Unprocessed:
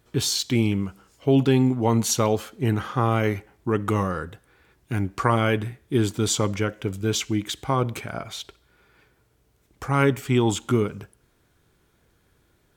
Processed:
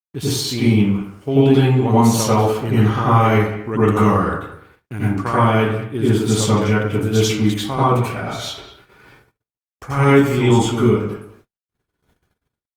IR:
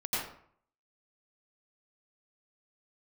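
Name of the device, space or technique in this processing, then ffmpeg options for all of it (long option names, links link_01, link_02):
speakerphone in a meeting room: -filter_complex "[1:a]atrim=start_sample=2205[link_01];[0:a][link_01]afir=irnorm=-1:irlink=0,asplit=2[link_02][link_03];[link_03]adelay=200,highpass=300,lowpass=3400,asoftclip=type=hard:threshold=-10.5dB,volume=-14dB[link_04];[link_02][link_04]amix=inputs=2:normalize=0,dynaudnorm=framelen=250:gausssize=5:maxgain=8dB,agate=range=-58dB:threshold=-46dB:ratio=16:detection=peak,volume=-1dB" -ar 48000 -c:a libopus -b:a 32k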